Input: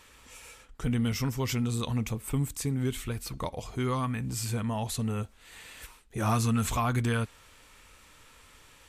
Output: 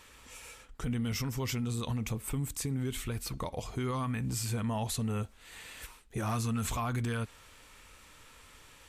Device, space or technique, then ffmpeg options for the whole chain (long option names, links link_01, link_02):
clipper into limiter: -af "asoftclip=type=hard:threshold=-19.5dB,alimiter=level_in=1.5dB:limit=-24dB:level=0:latency=1:release=62,volume=-1.5dB"